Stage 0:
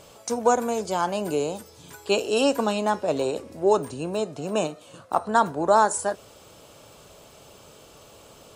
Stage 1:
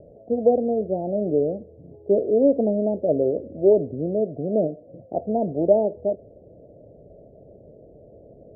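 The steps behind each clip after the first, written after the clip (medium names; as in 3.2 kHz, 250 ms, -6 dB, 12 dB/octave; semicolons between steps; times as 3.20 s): steep low-pass 670 Hz 72 dB/octave; trim +4.5 dB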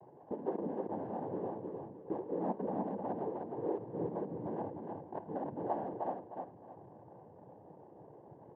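compression 2:1, threshold -35 dBFS, peak gain reduction 13 dB; noise-vocoded speech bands 8; feedback delay 308 ms, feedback 29%, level -4 dB; trim -8 dB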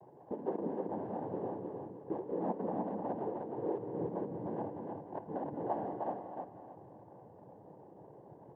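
reverberation RT60 0.30 s, pre-delay 170 ms, DRR 9.5 dB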